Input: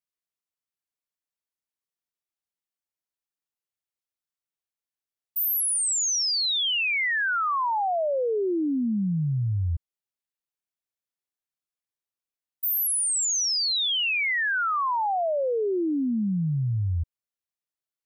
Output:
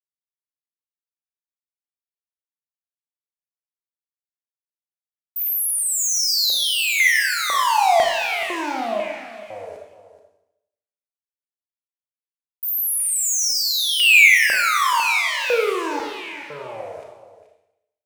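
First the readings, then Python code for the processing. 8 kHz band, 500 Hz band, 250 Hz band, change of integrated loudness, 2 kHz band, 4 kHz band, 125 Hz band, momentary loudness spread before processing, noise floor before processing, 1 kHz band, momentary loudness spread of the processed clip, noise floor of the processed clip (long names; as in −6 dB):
+4.5 dB, +3.0 dB, −8.5 dB, +7.0 dB, +10.0 dB, +5.5 dB, below −25 dB, 5 LU, below −85 dBFS, +6.5 dB, 20 LU, below −85 dBFS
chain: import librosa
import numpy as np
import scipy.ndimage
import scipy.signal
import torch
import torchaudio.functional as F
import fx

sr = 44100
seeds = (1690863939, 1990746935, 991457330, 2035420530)

p1 = fx.weighting(x, sr, curve='ITU-R 468')
p2 = fx.rider(p1, sr, range_db=5, speed_s=0.5)
p3 = p1 + (p2 * 10.0 ** (1.5 / 20.0))
p4 = fx.fuzz(p3, sr, gain_db=37.0, gate_db=-46.0)
p5 = fx.filter_lfo_highpass(p4, sr, shape='square', hz=1.0, low_hz=580.0, high_hz=2300.0, q=4.3)
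p6 = p5 + fx.echo_single(p5, sr, ms=429, db=-14.0, dry=0)
p7 = fx.rev_schroeder(p6, sr, rt60_s=0.82, comb_ms=27, drr_db=0.5)
y = p7 * 10.0 ** (-10.5 / 20.0)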